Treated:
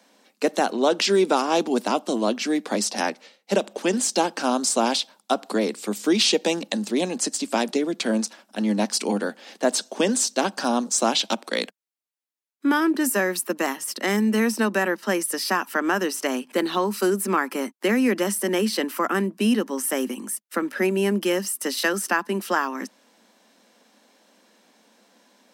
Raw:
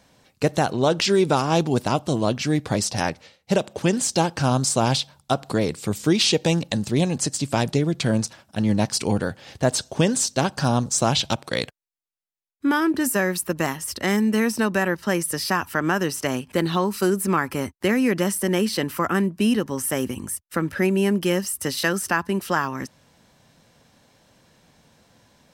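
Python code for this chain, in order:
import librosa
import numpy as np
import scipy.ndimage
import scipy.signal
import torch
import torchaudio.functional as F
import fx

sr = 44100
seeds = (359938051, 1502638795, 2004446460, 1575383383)

y = scipy.signal.sosfilt(scipy.signal.butter(12, 200.0, 'highpass', fs=sr, output='sos'), x)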